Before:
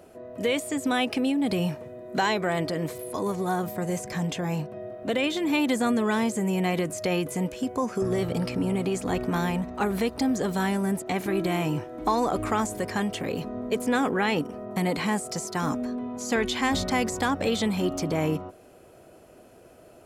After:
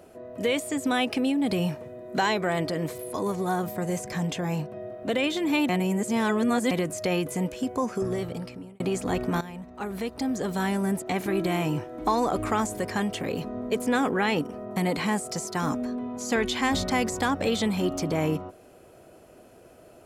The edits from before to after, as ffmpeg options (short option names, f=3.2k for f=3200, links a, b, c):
-filter_complex "[0:a]asplit=5[a][b][c][d][e];[a]atrim=end=5.692[f];[b]atrim=start=5.688:end=6.712,asetpts=PTS-STARTPTS,areverse[g];[c]atrim=start=6.708:end=8.8,asetpts=PTS-STARTPTS,afade=t=out:st=1.162:d=0.93[h];[d]atrim=start=8.8:end=9.41,asetpts=PTS-STARTPTS,afade=t=in:d=0.004:c=hsin,afade=t=out:st=0.606:d=0.004:c=hsin:silence=0.177828[i];[e]atrim=start=9.41,asetpts=PTS-STARTPTS,afade=t=in:d=1.42:silence=0.177828[j];[f][g]acrossfade=d=0.004:c1=hsin:c2=hsin[k];[h][i][j]concat=n=3:v=0:a=1[l];[k][l]acrossfade=d=0.004:c1=hsin:c2=hsin"